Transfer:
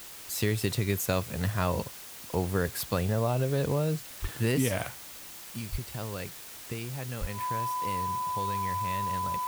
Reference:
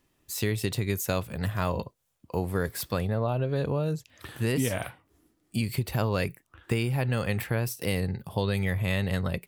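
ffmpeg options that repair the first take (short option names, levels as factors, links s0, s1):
-filter_complex "[0:a]bandreject=f=1000:w=30,asplit=3[s0][s1][s2];[s0]afade=t=out:st=4.21:d=0.02[s3];[s1]highpass=f=140:w=0.5412,highpass=f=140:w=1.3066,afade=t=in:st=4.21:d=0.02,afade=t=out:st=4.33:d=0.02[s4];[s2]afade=t=in:st=4.33:d=0.02[s5];[s3][s4][s5]amix=inputs=3:normalize=0,asplit=3[s6][s7][s8];[s6]afade=t=out:st=5.71:d=0.02[s9];[s7]highpass=f=140:w=0.5412,highpass=f=140:w=1.3066,afade=t=in:st=5.71:d=0.02,afade=t=out:st=5.83:d=0.02[s10];[s8]afade=t=in:st=5.83:d=0.02[s11];[s9][s10][s11]amix=inputs=3:normalize=0,asplit=3[s12][s13][s14];[s12]afade=t=out:st=7.2:d=0.02[s15];[s13]highpass=f=140:w=0.5412,highpass=f=140:w=1.3066,afade=t=in:st=7.2:d=0.02,afade=t=out:st=7.32:d=0.02[s16];[s14]afade=t=in:st=7.32:d=0.02[s17];[s15][s16][s17]amix=inputs=3:normalize=0,afwtdn=0.0056,asetnsamples=n=441:p=0,asendcmd='5.34 volume volume 10dB',volume=1"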